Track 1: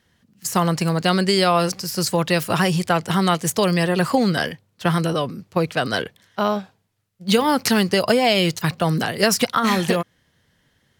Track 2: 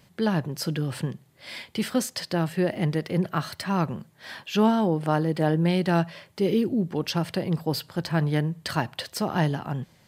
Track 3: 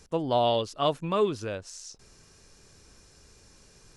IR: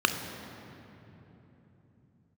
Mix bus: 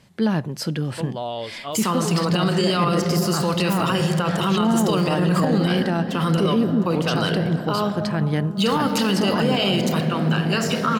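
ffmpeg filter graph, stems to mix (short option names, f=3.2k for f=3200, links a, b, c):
-filter_complex "[0:a]agate=range=-33dB:threshold=-45dB:ratio=3:detection=peak,adelay=1300,volume=-0.5dB,asplit=2[a][b];[b]volume=-14.5dB[c];[1:a]lowpass=11k,equalizer=f=220:w=6.9:g=5,volume=2.5dB,asplit=2[d][e];[2:a]adelay=850,volume=-4dB[f];[e]apad=whole_len=542138[g];[a][g]sidechaingate=range=-33dB:threshold=-53dB:ratio=16:detection=peak[h];[h][f]amix=inputs=2:normalize=0,alimiter=limit=-18.5dB:level=0:latency=1:release=35,volume=0dB[i];[3:a]atrim=start_sample=2205[j];[c][j]afir=irnorm=-1:irlink=0[k];[d][i][k]amix=inputs=3:normalize=0,alimiter=limit=-11dB:level=0:latency=1:release=29"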